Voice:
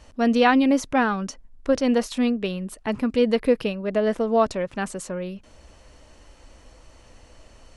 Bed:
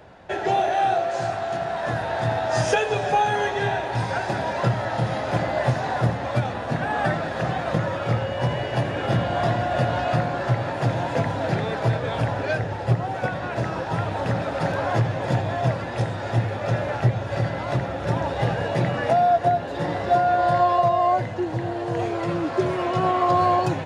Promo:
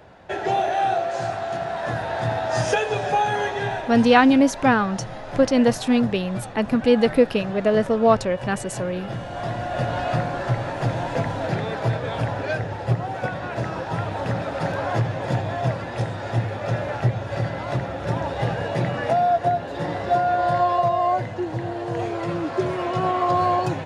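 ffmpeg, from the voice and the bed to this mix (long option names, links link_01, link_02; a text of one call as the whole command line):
ffmpeg -i stem1.wav -i stem2.wav -filter_complex "[0:a]adelay=3700,volume=3dB[link_01];[1:a]volume=7.5dB,afade=type=out:start_time=3.4:duration=1:silence=0.375837,afade=type=in:start_time=9.25:duration=0.78:silence=0.398107[link_02];[link_01][link_02]amix=inputs=2:normalize=0" out.wav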